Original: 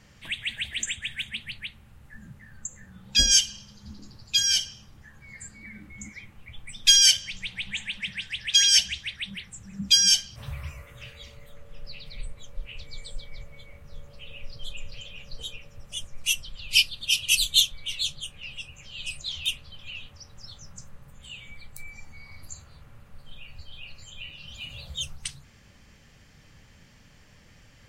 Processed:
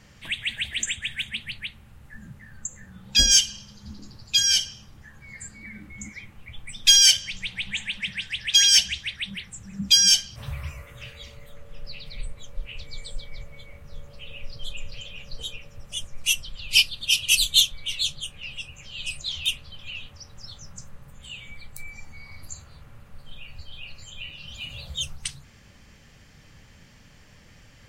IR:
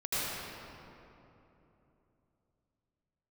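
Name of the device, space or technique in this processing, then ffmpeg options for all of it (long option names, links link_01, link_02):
parallel distortion: -filter_complex "[0:a]asplit=2[link_01][link_02];[link_02]asoftclip=type=hard:threshold=-16dB,volume=-9dB[link_03];[link_01][link_03]amix=inputs=2:normalize=0"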